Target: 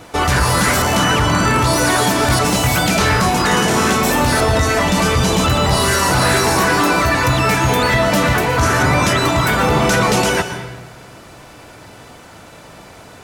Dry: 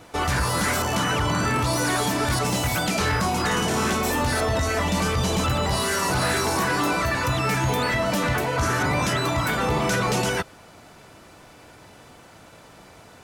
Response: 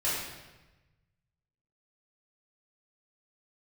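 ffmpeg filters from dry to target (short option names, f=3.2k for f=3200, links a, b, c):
-filter_complex "[0:a]asplit=2[a][b];[1:a]atrim=start_sample=2205,adelay=114[c];[b][c]afir=irnorm=-1:irlink=0,volume=-17.5dB[d];[a][d]amix=inputs=2:normalize=0,volume=8dB"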